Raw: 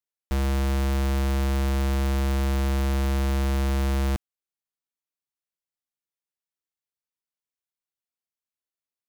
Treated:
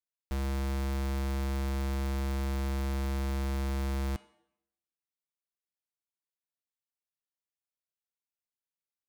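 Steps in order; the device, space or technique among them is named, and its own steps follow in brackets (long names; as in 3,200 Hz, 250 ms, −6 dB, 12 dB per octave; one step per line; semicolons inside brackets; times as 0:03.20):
hum removal 415.8 Hz, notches 26
filtered reverb send (on a send: high-pass filter 290 Hz 12 dB per octave + low-pass filter 7,500 Hz 12 dB per octave + convolution reverb RT60 0.80 s, pre-delay 23 ms, DRR 16 dB)
on the sum: level −8 dB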